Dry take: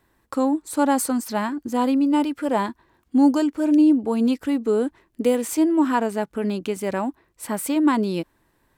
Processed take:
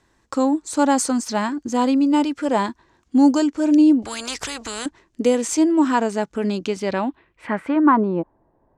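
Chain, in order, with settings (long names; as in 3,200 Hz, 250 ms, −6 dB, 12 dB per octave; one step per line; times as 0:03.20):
low-pass filter sweep 6,600 Hz → 710 Hz, 0:06.58–0:08.38
0:04.02–0:04.86: every bin compressed towards the loudest bin 4 to 1
level +2 dB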